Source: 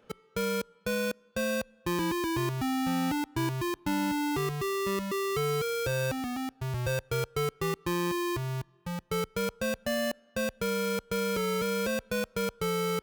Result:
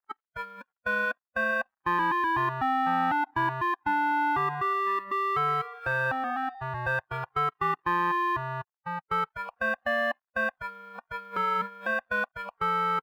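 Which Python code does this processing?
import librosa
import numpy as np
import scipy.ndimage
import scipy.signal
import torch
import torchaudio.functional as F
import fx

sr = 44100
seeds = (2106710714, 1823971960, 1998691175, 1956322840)

y = np.sign(x) * np.maximum(np.abs(x) - 10.0 ** (-56.0 / 20.0), 0.0)
y = fx.high_shelf_res(y, sr, hz=4400.0, db=-12.0, q=1.5)
y = fx.echo_stepped(y, sr, ms=184, hz=650.0, octaves=1.4, feedback_pct=70, wet_db=-11, at=(4.14, 6.62))
y = fx.noise_reduce_blind(y, sr, reduce_db=19)
y = fx.band_shelf(y, sr, hz=1100.0, db=15.5, octaves=1.7)
y = F.gain(torch.from_numpy(y), -5.0).numpy()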